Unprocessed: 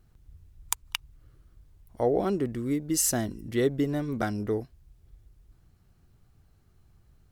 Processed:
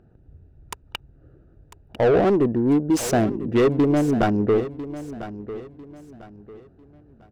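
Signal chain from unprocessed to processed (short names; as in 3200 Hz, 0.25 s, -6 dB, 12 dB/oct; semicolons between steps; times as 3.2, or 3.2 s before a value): Wiener smoothing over 41 samples; overdrive pedal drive 31 dB, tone 1200 Hz, clips at -6.5 dBFS; feedback echo 0.998 s, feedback 31%, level -14 dB; gain -1.5 dB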